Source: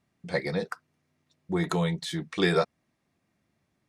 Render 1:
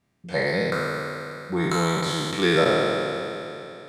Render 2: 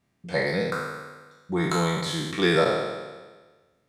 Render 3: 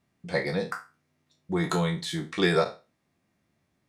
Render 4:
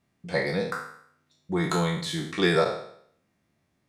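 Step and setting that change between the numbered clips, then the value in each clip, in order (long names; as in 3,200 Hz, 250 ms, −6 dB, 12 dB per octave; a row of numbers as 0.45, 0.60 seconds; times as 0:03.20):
peak hold with a decay on every bin, RT60: 3.07, 1.37, 0.3, 0.64 seconds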